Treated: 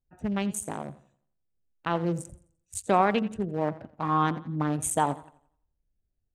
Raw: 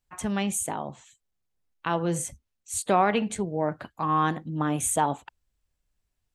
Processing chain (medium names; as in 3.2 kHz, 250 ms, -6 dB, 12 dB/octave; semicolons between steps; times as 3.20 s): local Wiener filter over 41 samples; modulated delay 86 ms, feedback 37%, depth 76 cents, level -17.5 dB